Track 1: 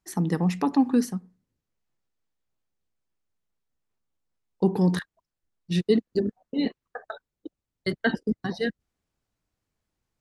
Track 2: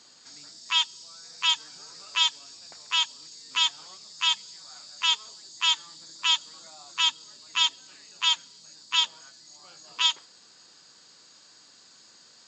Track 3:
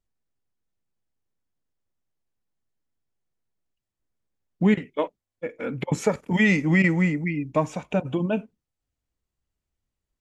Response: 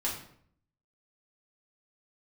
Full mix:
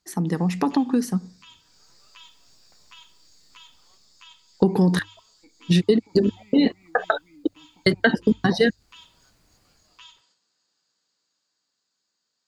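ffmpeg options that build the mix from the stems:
-filter_complex "[0:a]dynaudnorm=f=120:g=11:m=16dB,bandreject=f=50:t=h:w=6,bandreject=f=100:t=h:w=6,acompressor=threshold=-20dB:ratio=6,volume=1.5dB[a];[1:a]agate=range=-7dB:threshold=-49dB:ratio=16:detection=peak,alimiter=limit=-18dB:level=0:latency=1,volume=-17.5dB,asplit=2[b][c];[c]volume=-16dB[d];[2:a]alimiter=limit=-18dB:level=0:latency=1,asplit=3[e][f][g];[e]bandpass=f=300:t=q:w=8,volume=0dB[h];[f]bandpass=f=870:t=q:w=8,volume=-6dB[i];[g]bandpass=f=2.24k:t=q:w=8,volume=-9dB[j];[h][i][j]amix=inputs=3:normalize=0,volume=-13.5dB,asplit=2[k][l];[l]apad=whole_len=550153[m];[b][m]sidechaincompress=threshold=-60dB:ratio=8:attack=16:release=325[n];[n][k]amix=inputs=2:normalize=0,acompressor=threshold=-53dB:ratio=6,volume=0dB[o];[3:a]atrim=start_sample=2205[p];[d][p]afir=irnorm=-1:irlink=0[q];[a][o][q]amix=inputs=3:normalize=0,dynaudnorm=f=100:g=31:m=4.5dB"

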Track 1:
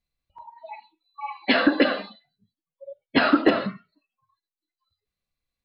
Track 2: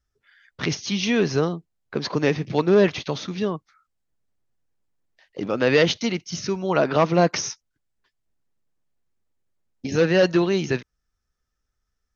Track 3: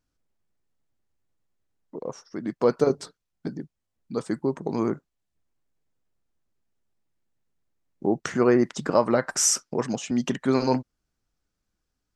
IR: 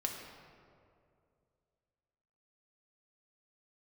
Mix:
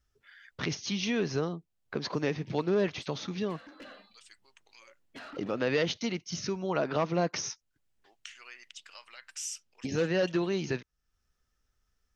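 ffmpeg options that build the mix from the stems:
-filter_complex "[0:a]equalizer=f=380:t=o:w=2.5:g=-4.5,asoftclip=type=tanh:threshold=-21dB,adelay=2000,volume=-18.5dB[a];[1:a]volume=1.5dB[b];[2:a]highpass=f=2.8k:t=q:w=4.1,volume=-11.5dB[c];[a][b][c]amix=inputs=3:normalize=0,acompressor=threshold=-46dB:ratio=1.5"

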